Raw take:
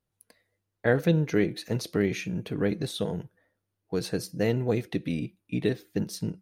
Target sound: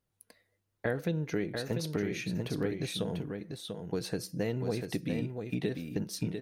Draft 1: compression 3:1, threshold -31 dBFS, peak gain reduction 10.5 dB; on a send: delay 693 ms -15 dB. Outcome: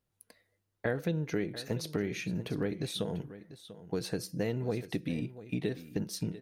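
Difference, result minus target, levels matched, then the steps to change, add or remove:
echo-to-direct -9 dB
change: delay 693 ms -6 dB

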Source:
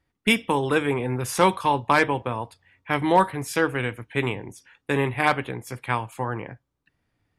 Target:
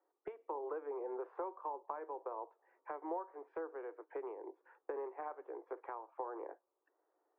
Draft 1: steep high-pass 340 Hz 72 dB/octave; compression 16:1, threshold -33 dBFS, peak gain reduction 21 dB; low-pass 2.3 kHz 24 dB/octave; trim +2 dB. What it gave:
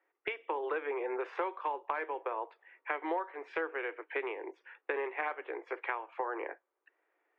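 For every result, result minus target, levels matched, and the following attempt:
2 kHz band +12.5 dB; compression: peak gain reduction -6 dB
steep high-pass 340 Hz 72 dB/octave; compression 16:1, threshold -33 dBFS, peak gain reduction 21 dB; low-pass 1.1 kHz 24 dB/octave; trim +2 dB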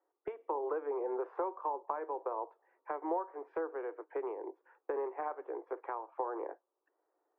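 compression: peak gain reduction -6 dB
steep high-pass 340 Hz 72 dB/octave; compression 16:1, threshold -39.5 dBFS, peak gain reduction 27 dB; low-pass 1.1 kHz 24 dB/octave; trim +2 dB

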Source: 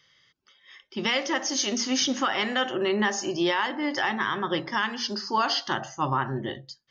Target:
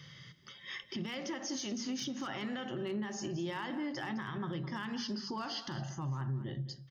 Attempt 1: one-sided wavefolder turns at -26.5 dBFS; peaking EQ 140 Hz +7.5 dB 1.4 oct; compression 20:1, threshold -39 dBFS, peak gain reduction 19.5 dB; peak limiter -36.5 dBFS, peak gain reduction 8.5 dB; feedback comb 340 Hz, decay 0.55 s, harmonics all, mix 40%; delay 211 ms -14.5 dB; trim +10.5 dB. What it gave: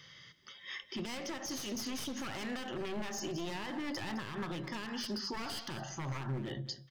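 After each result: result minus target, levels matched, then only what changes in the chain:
one-sided wavefolder: distortion +27 dB; 125 Hz band -2.5 dB
change: one-sided wavefolder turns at -16 dBFS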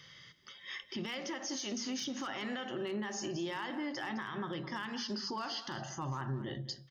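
125 Hz band -4.0 dB
change: peaking EQ 140 Hz +19.5 dB 1.4 oct

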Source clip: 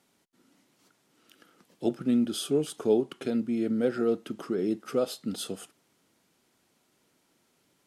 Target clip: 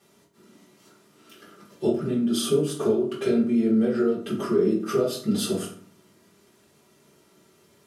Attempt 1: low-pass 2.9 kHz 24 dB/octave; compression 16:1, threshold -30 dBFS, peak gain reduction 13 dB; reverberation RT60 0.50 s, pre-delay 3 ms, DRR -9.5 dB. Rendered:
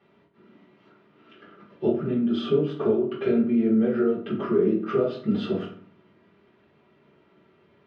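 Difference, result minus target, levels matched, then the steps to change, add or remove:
4 kHz band -7.0 dB
remove: low-pass 2.9 kHz 24 dB/octave

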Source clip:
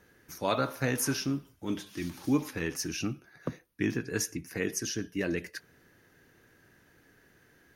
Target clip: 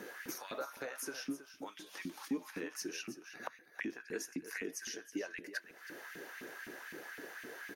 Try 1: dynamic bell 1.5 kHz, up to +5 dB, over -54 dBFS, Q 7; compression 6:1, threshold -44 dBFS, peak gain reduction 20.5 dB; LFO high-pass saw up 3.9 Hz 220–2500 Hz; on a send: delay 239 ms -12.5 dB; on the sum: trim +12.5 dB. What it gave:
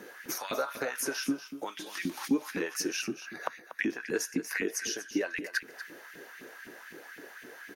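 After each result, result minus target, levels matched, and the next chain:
compression: peak gain reduction -9.5 dB; echo 82 ms early
dynamic bell 1.5 kHz, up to +5 dB, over -54 dBFS, Q 7; compression 6:1, threshold -55.5 dBFS, peak gain reduction 30 dB; LFO high-pass saw up 3.9 Hz 220–2500 Hz; on a send: delay 239 ms -12.5 dB; on the sum: trim +12.5 dB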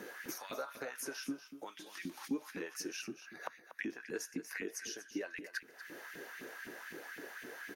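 echo 82 ms early
dynamic bell 1.5 kHz, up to +5 dB, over -54 dBFS, Q 7; compression 6:1, threshold -55.5 dBFS, peak gain reduction 30 dB; LFO high-pass saw up 3.9 Hz 220–2500 Hz; on a send: delay 321 ms -12.5 dB; on the sum: trim +12.5 dB

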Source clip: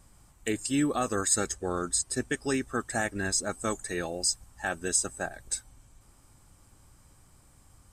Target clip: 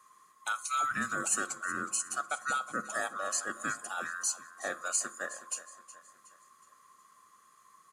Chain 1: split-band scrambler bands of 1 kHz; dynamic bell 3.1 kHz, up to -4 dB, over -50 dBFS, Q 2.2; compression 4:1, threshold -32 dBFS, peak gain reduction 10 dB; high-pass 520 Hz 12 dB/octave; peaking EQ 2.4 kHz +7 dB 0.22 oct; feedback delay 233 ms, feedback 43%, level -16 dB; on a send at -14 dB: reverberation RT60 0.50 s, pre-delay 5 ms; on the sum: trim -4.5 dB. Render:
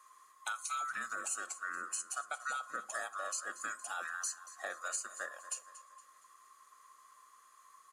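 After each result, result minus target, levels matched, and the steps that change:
250 Hz band -11.0 dB; compression: peak gain reduction +10 dB; echo 135 ms early
change: high-pass 180 Hz 12 dB/octave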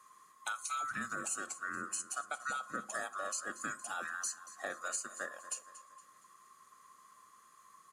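compression: peak gain reduction +10 dB; echo 135 ms early
remove: compression 4:1, threshold -32 dBFS, peak gain reduction 10 dB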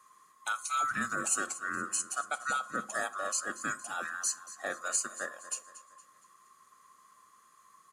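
echo 135 ms early
change: feedback delay 368 ms, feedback 43%, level -16 dB

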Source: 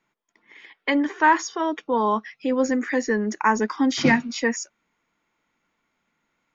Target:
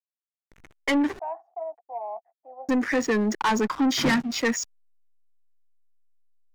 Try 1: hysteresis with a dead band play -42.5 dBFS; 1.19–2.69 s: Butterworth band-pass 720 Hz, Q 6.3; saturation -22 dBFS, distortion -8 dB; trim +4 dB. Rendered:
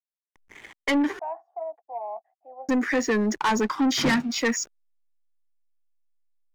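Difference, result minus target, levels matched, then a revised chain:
hysteresis with a dead band: distortion -8 dB
hysteresis with a dead band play -33.5 dBFS; 1.19–2.69 s: Butterworth band-pass 720 Hz, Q 6.3; saturation -22 dBFS, distortion -8 dB; trim +4 dB

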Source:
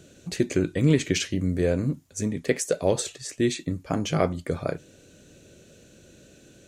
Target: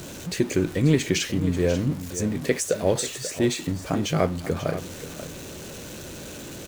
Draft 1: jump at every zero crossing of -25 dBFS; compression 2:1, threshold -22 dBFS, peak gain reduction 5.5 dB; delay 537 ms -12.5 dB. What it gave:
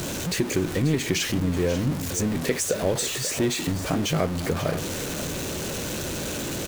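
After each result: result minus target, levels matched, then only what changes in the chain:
compression: peak gain reduction +5.5 dB; jump at every zero crossing: distortion +8 dB
remove: compression 2:1, threshold -22 dBFS, peak gain reduction 5.5 dB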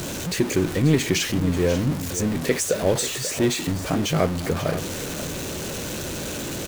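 jump at every zero crossing: distortion +8 dB
change: jump at every zero crossing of -34 dBFS

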